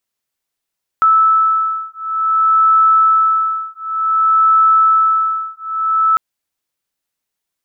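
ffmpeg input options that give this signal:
-f lavfi -i "aevalsrc='0.224*(sin(2*PI*1310*t)+sin(2*PI*1310.55*t))':d=5.15:s=44100"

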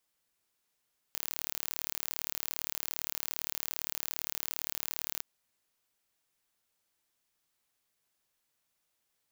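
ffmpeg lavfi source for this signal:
-f lavfi -i "aevalsrc='0.398*eq(mod(n,1176),0)':d=4.08:s=44100"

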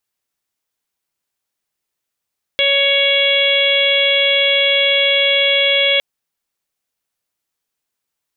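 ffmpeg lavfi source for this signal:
-f lavfi -i "aevalsrc='0.126*sin(2*PI*558*t)+0.0141*sin(2*PI*1116*t)+0.0447*sin(2*PI*1674*t)+0.141*sin(2*PI*2232*t)+0.1*sin(2*PI*2790*t)+0.178*sin(2*PI*3348*t)+0.0237*sin(2*PI*3906*t)':d=3.41:s=44100"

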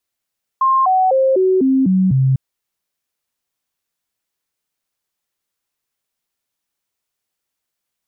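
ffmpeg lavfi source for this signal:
-f lavfi -i "aevalsrc='0.299*clip(min(mod(t,0.25),0.25-mod(t,0.25))/0.005,0,1)*sin(2*PI*1060*pow(2,-floor(t/0.25)/2)*mod(t,0.25))':d=1.75:s=44100"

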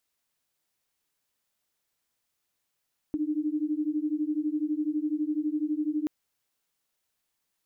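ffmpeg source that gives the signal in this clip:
-f lavfi -i "aevalsrc='0.0355*(sin(2*PI*297*t)+sin(2*PI*309*t))':d=2.93:s=44100"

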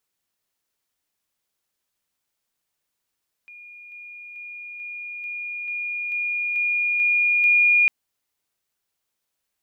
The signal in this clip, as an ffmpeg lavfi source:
-f lavfi -i "aevalsrc='pow(10,(-40.5+3*floor(t/0.44))/20)*sin(2*PI*2430*t)':d=4.4:s=44100"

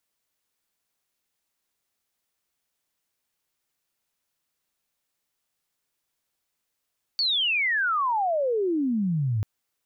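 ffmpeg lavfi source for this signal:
-f lavfi -i "aevalsrc='pow(10,(-21-1*t/2.24)/20)*sin(2*PI*4600*2.24/log(100/4600)*(exp(log(100/4600)*t/2.24)-1))':d=2.24:s=44100"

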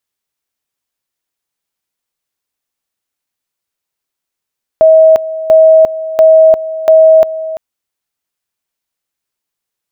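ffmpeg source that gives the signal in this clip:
-f lavfi -i "aevalsrc='pow(10,(-1.5-15*gte(mod(t,0.69),0.35))/20)*sin(2*PI*639*t)':d=2.76:s=44100"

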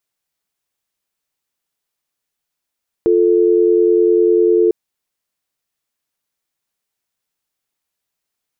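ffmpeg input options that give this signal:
-f lavfi -i "aevalsrc='0.251*(sin(2*PI*350*t)+sin(2*PI*440*t))':d=1.65:s=44100"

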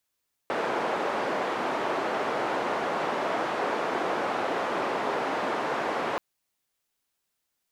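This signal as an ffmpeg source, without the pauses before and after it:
-f lavfi -i "anoisesrc=c=white:d=5.68:r=44100:seed=1,highpass=f=340,lowpass=f=920,volume=-8.5dB"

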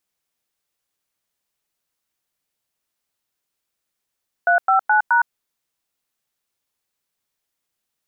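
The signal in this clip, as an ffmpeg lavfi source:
-f lavfi -i "aevalsrc='0.178*clip(min(mod(t,0.212),0.112-mod(t,0.212))/0.002,0,1)*(eq(floor(t/0.212),0)*(sin(2*PI*697*mod(t,0.212))+sin(2*PI*1477*mod(t,0.212)))+eq(floor(t/0.212),1)*(sin(2*PI*770*mod(t,0.212))+sin(2*PI*1336*mod(t,0.212)))+eq(floor(t/0.212),2)*(sin(2*PI*852*mod(t,0.212))+sin(2*PI*1477*mod(t,0.212)))+eq(floor(t/0.212),3)*(sin(2*PI*941*mod(t,0.212))+sin(2*PI*1477*mod(t,0.212))))':d=0.848:s=44100"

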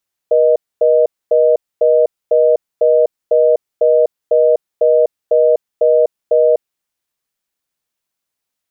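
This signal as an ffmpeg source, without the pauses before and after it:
-f lavfi -i "aevalsrc='0.299*(sin(2*PI*480*t)+sin(2*PI*620*t))*clip(min(mod(t,0.5),0.25-mod(t,0.5))/0.005,0,1)':d=6.42:s=44100"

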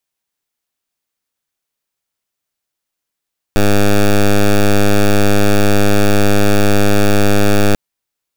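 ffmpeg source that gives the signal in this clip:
-f lavfi -i "aevalsrc='0.355*(2*lt(mod(102*t,1),0.1)-1)':d=4.19:s=44100"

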